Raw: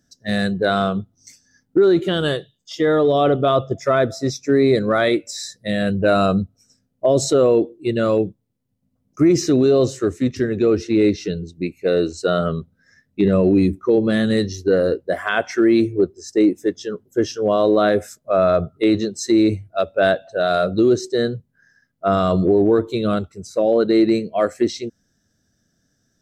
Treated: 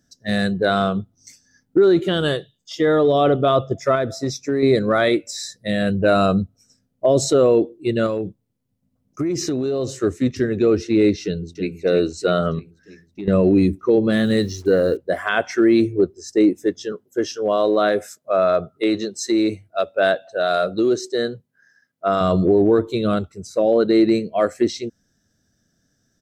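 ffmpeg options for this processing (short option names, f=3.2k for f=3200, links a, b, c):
-filter_complex "[0:a]asettb=1/sr,asplit=3[a][b][c];[a]atrim=end=3.954[d];[b]atrim=start=3.95:end=4.63,asetpts=PTS-STARTPTS,afade=t=in:d=0.004:c=qsin,afade=t=out:st=0.676:d=0.004:c=qsin,acompressor=threshold=-18dB:ratio=3:attack=3.2:release=140:knee=1:detection=peak[e];[c]atrim=start=4.626[f];[d][e]acrossfade=d=0.004:c1=hsin:c2=qsin[g];[g][f]acrossfade=d=0.004:c1=qsin:c2=hsin,asettb=1/sr,asplit=3[h][i][j];[h]atrim=end=8.064[k];[i]atrim=start=8.06:end=10.03,asetpts=PTS-STARTPTS,afade=t=in:d=0.004:c=qsin,afade=t=out:st=1.966:d=0.004:c=qsin,acompressor=threshold=-19dB:ratio=6:attack=3.2:release=140:knee=1:detection=peak[l];[j]atrim=start=10.026[m];[k][l]acrossfade=d=0.004:c1=hsin:c2=qsin[n];[n][m]acrossfade=d=0.004:c1=qsin:c2=hsin,asplit=2[o][p];[p]afade=t=in:st=11.23:d=0.01,afade=t=out:st=11.74:d=0.01,aecho=0:1:320|640|960|1280|1600|1920|2240|2560:0.421697|0.253018|0.151811|0.0910864|0.0546519|0.0327911|0.0196747|0.0118048[q];[o][q]amix=inputs=2:normalize=0,asettb=1/sr,asplit=3[r][s][t];[r]atrim=end=12.594[u];[s]atrim=start=12.59:end=13.28,asetpts=PTS-STARTPTS,afade=t=in:d=0.004:c=qsin,afade=t=out:st=0.686:d=0.004:c=qsin,acompressor=threshold=-34dB:ratio=2.5:attack=3.2:release=140:knee=1:detection=peak[v];[t]atrim=start=13.276[w];[u][v]acrossfade=d=0.004:c1=hsin:c2=qsin[x];[x][w]acrossfade=d=0.004:c1=qsin:c2=hsin,asettb=1/sr,asplit=3[y][z][aa];[y]atrim=end=14.124[ab];[z]atrim=start=14.12:end=14.97,asetpts=PTS-STARTPTS,afade=t=in:d=0.004:c=qsin,afade=t=out:st=0.846:d=0.004:c=qsin,acrusher=bits=7:mix=0:aa=0.5[ac];[aa]atrim=start=14.966[ad];[ab][ac]acrossfade=d=0.004:c1=hsin:c2=qsin[ae];[ae][ad]acrossfade=d=0.004:c1=qsin:c2=hsin,asettb=1/sr,asplit=3[af][ag][ah];[af]atrim=end=16.924[ai];[ag]atrim=start=16.92:end=22.21,asetpts=PTS-STARTPTS,afade=t=in:d=0.004:c=qsin,afade=t=out:st=5.286:d=0.004:c=qsin,highpass=f=350:p=1[aj];[ah]atrim=start=22.206[ak];[ai][aj]acrossfade=d=0.004:c1=hsin:c2=qsin[al];[al][ak]acrossfade=d=0.004:c1=qsin:c2=hsin"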